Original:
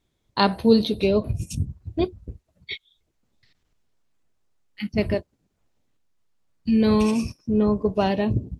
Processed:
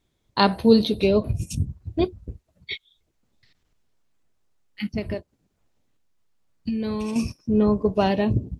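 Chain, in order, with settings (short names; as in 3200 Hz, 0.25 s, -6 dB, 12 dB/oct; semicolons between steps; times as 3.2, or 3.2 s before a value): 4.91–7.16 compressor 10:1, threshold -25 dBFS, peak gain reduction 10.5 dB; gain +1 dB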